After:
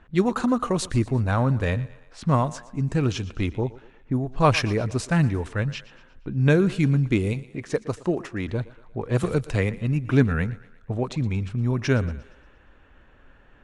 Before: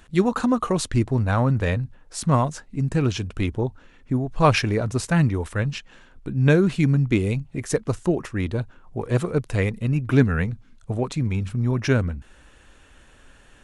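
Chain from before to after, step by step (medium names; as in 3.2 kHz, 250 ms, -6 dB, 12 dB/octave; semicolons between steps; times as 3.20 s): level-controlled noise filter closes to 1.9 kHz, open at -17.5 dBFS; 7.33–8.48 s: bass shelf 100 Hz -10.5 dB; thinning echo 117 ms, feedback 50%, high-pass 230 Hz, level -18 dB; 9.23–9.78 s: three bands compressed up and down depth 70%; trim -1.5 dB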